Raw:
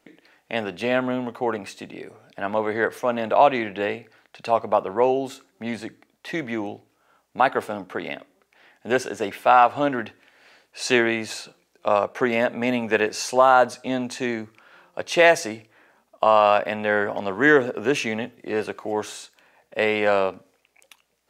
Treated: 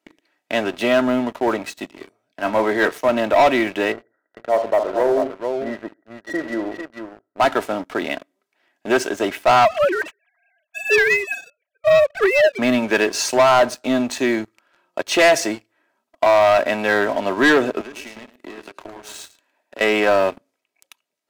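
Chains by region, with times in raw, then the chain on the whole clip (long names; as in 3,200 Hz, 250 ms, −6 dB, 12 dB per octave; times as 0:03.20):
0:01.90–0:03.08: double-tracking delay 24 ms −11 dB + multiband upward and downward expander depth 40%
0:03.92–0:07.41: Chebyshev low-pass with heavy ripple 2,000 Hz, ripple 9 dB + multi-tap delay 56/75/132/445 ms −11/−15.5/−19/−7 dB
0:09.65–0:12.59: three sine waves on the formant tracks + high-shelf EQ 2,400 Hz +9.5 dB
0:17.81–0:19.81: downward compressor 12 to 1, threshold −35 dBFS + Chebyshev high-pass filter 220 Hz, order 3 + single-tap delay 109 ms −7 dB
whole clip: high-pass filter 120 Hz 24 dB per octave; comb filter 3.1 ms, depth 49%; leveller curve on the samples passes 3; level −5.5 dB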